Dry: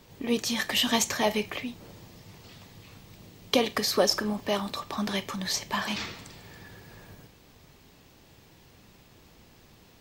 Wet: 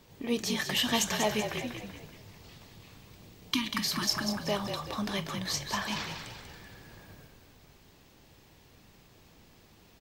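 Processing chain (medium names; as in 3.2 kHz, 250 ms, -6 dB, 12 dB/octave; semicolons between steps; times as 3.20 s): spectral replace 3.43–4.30 s, 350–890 Hz both; frequency-shifting echo 191 ms, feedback 46%, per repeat -46 Hz, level -7 dB; trim -3.5 dB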